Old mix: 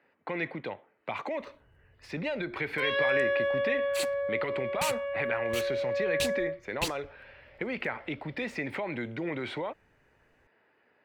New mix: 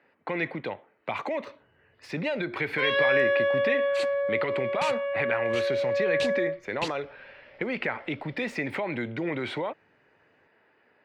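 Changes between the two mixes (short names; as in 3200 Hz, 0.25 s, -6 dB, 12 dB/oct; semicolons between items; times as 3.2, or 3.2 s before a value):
speech +3.5 dB; first sound +4.0 dB; second sound: add BPF 130–4800 Hz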